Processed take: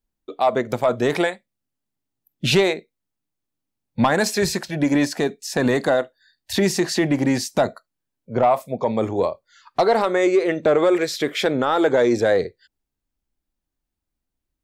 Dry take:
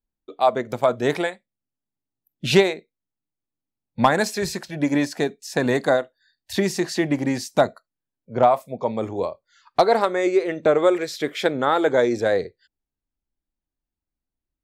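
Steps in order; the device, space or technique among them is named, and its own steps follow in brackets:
soft clipper into limiter (soft clipping −7.5 dBFS, distortion −21 dB; brickwall limiter −14.5 dBFS, peak gain reduction 5.5 dB)
level +5 dB

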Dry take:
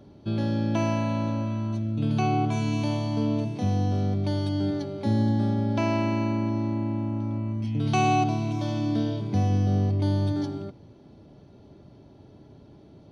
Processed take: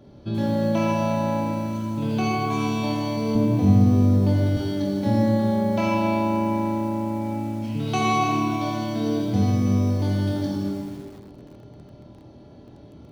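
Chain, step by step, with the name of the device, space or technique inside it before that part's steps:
stairwell (convolution reverb RT60 1.7 s, pre-delay 41 ms, DRR −0.5 dB)
0:03.35–0:04.57: spectral tilt −2 dB per octave
flutter between parallel walls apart 4.3 metres, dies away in 0.29 s
feedback echo at a low word length 85 ms, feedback 35%, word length 7 bits, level −9 dB

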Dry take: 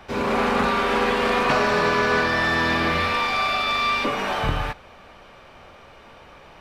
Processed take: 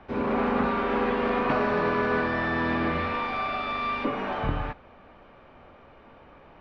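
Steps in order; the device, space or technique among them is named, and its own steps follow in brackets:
phone in a pocket (low-pass filter 3,500 Hz 12 dB per octave; parametric band 270 Hz +5 dB 0.56 octaves; high-shelf EQ 2,400 Hz −10 dB)
level −4 dB

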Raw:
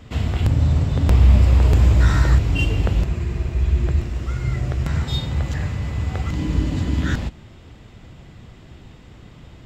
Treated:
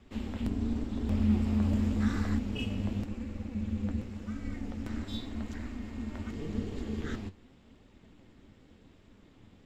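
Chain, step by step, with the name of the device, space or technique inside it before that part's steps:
alien voice (ring modulation 150 Hz; flanger 0.89 Hz, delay 1.5 ms, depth 9.5 ms, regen +62%)
level −7.5 dB

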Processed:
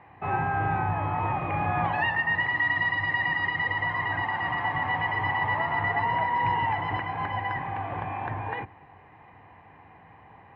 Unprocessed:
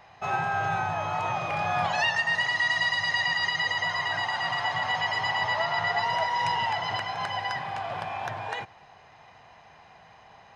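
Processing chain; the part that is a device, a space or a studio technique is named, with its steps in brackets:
sub-octave bass pedal (sub-octave generator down 2 octaves, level −6 dB; loudspeaker in its box 63–2,100 Hz, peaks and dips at 96 Hz +7 dB, 300 Hz +9 dB, 640 Hz −9 dB, 1,400 Hz −9 dB)
level +3.5 dB

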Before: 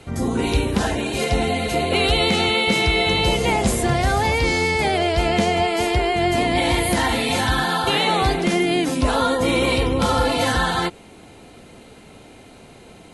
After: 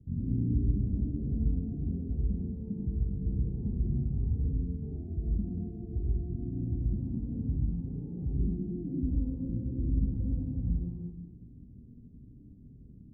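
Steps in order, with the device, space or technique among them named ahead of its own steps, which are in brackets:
club heard from the street (brickwall limiter −15 dBFS, peak gain reduction 7 dB; low-pass filter 220 Hz 24 dB per octave; convolution reverb RT60 1.2 s, pre-delay 70 ms, DRR −2 dB)
0:04.62–0:05.27: flat-topped bell 3,700 Hz +14.5 dB
level −5.5 dB

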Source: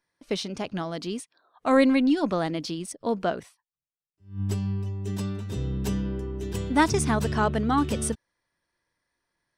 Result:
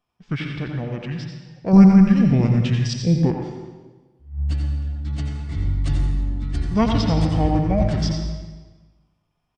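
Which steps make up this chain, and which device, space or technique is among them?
monster voice (pitch shifter −5.5 semitones; formants moved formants −4 semitones; low-shelf EQ 150 Hz +8 dB; single-tap delay 88 ms −8.5 dB; convolution reverb RT60 1.3 s, pre-delay 71 ms, DRR 4 dB)
0:01.73–0:03.31: bass and treble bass +8 dB, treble +11 dB

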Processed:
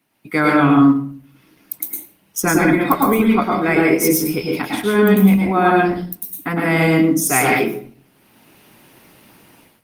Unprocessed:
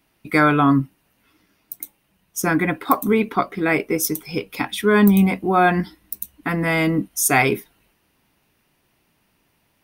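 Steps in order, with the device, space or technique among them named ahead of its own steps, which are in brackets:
far-field microphone of a smart speaker (convolution reverb RT60 0.50 s, pre-delay 101 ms, DRR −1.5 dB; high-pass filter 110 Hz 24 dB per octave; automatic gain control gain up to 16.5 dB; level −1.5 dB; Opus 20 kbit/s 48,000 Hz)

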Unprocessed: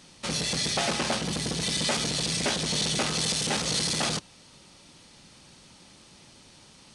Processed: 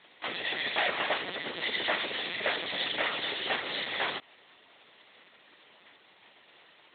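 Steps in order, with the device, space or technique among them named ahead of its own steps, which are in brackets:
talking toy (linear-prediction vocoder at 8 kHz; high-pass filter 430 Hz 12 dB per octave; parametric band 1,900 Hz +8 dB 0.28 octaves)

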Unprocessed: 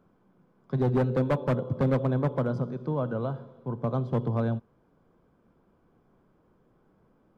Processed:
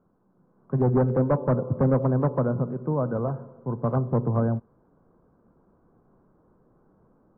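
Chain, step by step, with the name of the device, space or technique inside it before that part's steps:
action camera in a waterproof case (low-pass filter 1,400 Hz 24 dB per octave; automatic gain control gain up to 6 dB; level −2.5 dB; AAC 48 kbit/s 48,000 Hz)

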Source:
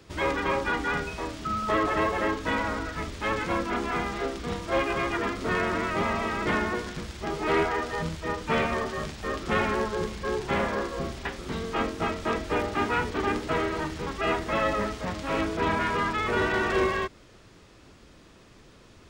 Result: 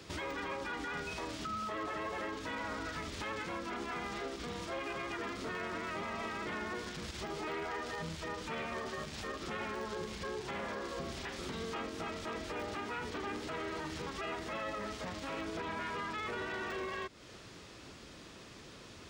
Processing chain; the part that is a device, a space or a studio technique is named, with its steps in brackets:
broadcast voice chain (high-pass filter 90 Hz 6 dB per octave; de-essing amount 80%; downward compressor 3 to 1, threshold −39 dBFS, peak gain reduction 13.5 dB; parametric band 4,500 Hz +4 dB 2.1 octaves; brickwall limiter −32.5 dBFS, peak gain reduction 8 dB)
level +1 dB

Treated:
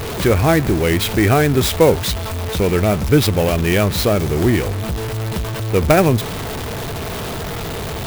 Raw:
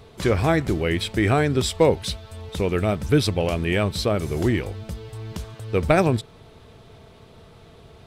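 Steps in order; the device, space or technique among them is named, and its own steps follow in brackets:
early CD player with a faulty converter (converter with a step at zero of −24 dBFS; converter with an unsteady clock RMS 0.031 ms)
level +4 dB

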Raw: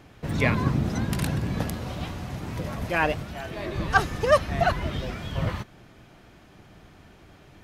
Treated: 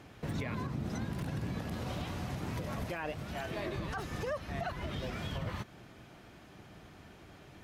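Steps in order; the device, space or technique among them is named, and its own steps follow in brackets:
podcast mastering chain (high-pass filter 62 Hz 6 dB per octave; de-essing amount 85%; downward compressor 4 to 1, threshold −31 dBFS, peak gain reduction 13 dB; brickwall limiter −26 dBFS, peak gain reduction 7 dB; level −1.5 dB; MP3 96 kbit/s 44,100 Hz)

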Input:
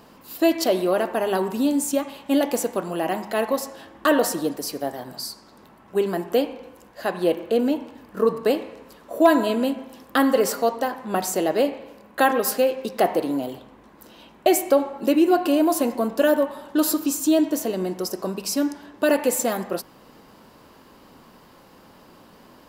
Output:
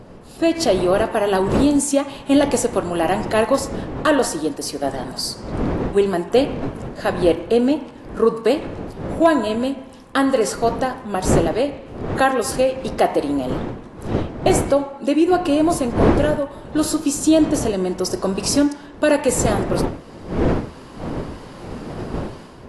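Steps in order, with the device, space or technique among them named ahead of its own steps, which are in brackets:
smartphone video outdoors (wind on the microphone 400 Hz −28 dBFS; automatic gain control gain up to 13 dB; level −3 dB; AAC 48 kbit/s 24,000 Hz)

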